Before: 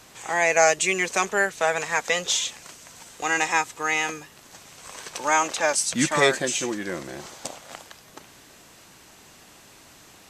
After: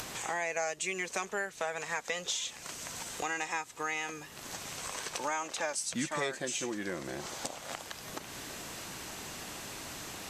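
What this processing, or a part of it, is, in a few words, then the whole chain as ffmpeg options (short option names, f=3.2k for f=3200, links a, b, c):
upward and downward compression: -af "acompressor=mode=upward:threshold=-30dB:ratio=2.5,acompressor=threshold=-30dB:ratio=4,volume=-2.5dB"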